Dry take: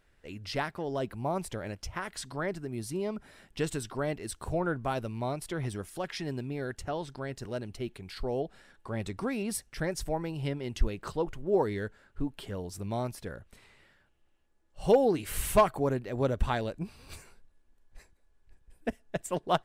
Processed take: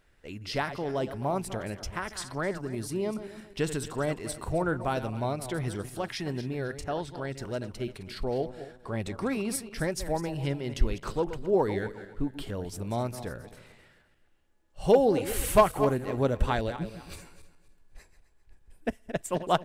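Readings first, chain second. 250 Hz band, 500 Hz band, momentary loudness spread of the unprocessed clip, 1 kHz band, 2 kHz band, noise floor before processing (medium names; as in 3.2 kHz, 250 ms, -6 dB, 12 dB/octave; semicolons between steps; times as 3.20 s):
+2.5 dB, +2.5 dB, 12 LU, +2.5 dB, +2.5 dB, -67 dBFS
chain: backward echo that repeats 131 ms, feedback 50%, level -11.5 dB; trim +2 dB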